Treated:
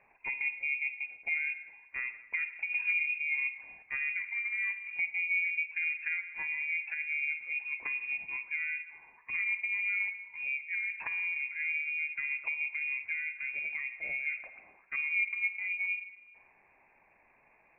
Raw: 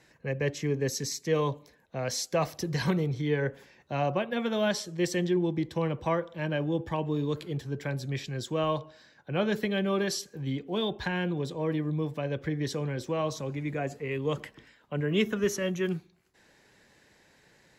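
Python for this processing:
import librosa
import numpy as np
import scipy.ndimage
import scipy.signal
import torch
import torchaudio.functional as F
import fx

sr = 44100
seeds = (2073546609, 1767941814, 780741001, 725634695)

y = fx.env_lowpass_down(x, sr, base_hz=440.0, full_db=-27.0)
y = fx.rev_schroeder(y, sr, rt60_s=1.2, comb_ms=38, drr_db=10.5)
y = fx.freq_invert(y, sr, carrier_hz=2600)
y = y * librosa.db_to_amplitude(-3.5)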